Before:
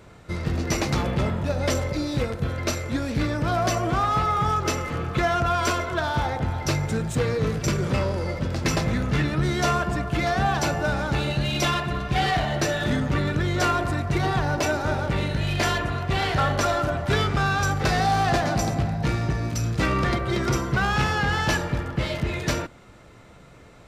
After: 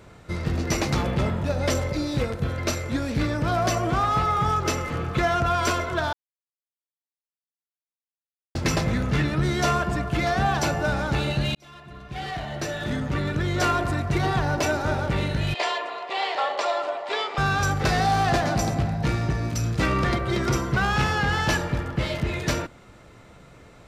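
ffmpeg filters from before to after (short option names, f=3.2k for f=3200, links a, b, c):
-filter_complex "[0:a]asettb=1/sr,asplit=3[a][b][c];[a]atrim=end=15.544[d];[b]atrim=start=15.54:end=17.38,asetpts=PTS-STARTPTS,afade=t=in:d=0.004:c=qsin,afade=t=out:st=1.836:d=0.004:c=qsin,highpass=f=460:w=0.5412,highpass=f=460:w=1.3066,equalizer=f=920:t=q:w=4:g=4,equalizer=f=1.5k:t=q:w=4:g=-9,equalizer=f=6k:t=q:w=4:g=-9,lowpass=f=6.9k:w=0.5412,lowpass=f=6.9k:w=1.3066[e];[c]atrim=start=17.376[f];[d][e]acrossfade=d=0.004:c1=hsin:c2=qsin[g];[g][f]acrossfade=d=0.004:c1=qsin:c2=hsin,asplit=4[h][i][j][k];[h]atrim=end=6.13,asetpts=PTS-STARTPTS,afade=t=out:st=6.126:d=0.004:c=hsin[l];[i]atrim=start=6.13:end=8.55,asetpts=PTS-STARTPTS,volume=0[m];[j]atrim=start=8.55:end=11.55,asetpts=PTS-STARTPTS,afade=t=in:d=0.004:c=hsin,afade=t=out:st=2.996:d=0.004:c=hsin[n];[k]atrim=start=11.55,asetpts=PTS-STARTPTS,afade=t=in:d=2.17[o];[l][m][n][o]concat=n=4:v=0:a=1"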